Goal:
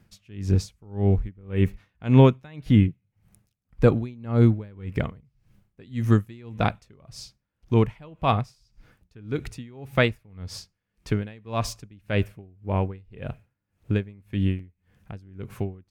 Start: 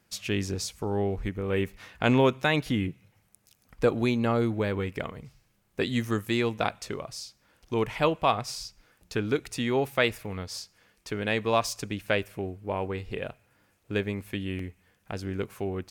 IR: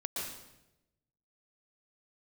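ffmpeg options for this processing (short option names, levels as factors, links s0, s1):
-af "bass=f=250:g=13,treble=f=4000:g=-5,aeval=exprs='val(0)*pow(10,-28*(0.5-0.5*cos(2*PI*1.8*n/s))/20)':c=same,volume=1.41"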